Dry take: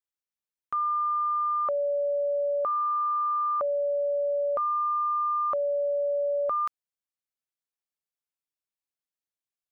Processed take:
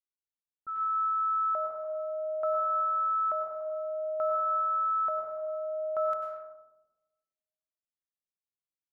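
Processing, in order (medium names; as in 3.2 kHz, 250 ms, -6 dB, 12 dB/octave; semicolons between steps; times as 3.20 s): plate-style reverb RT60 1.6 s, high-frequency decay 0.55×, pre-delay 90 ms, DRR 0.5 dB; speed mistake 44.1 kHz file played as 48 kHz; on a send: filtered feedback delay 238 ms, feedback 43%, low-pass 1 kHz, level -22 dB; on the sum: level-controlled noise filter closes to 360 Hz, open at -21.5 dBFS; trim -8 dB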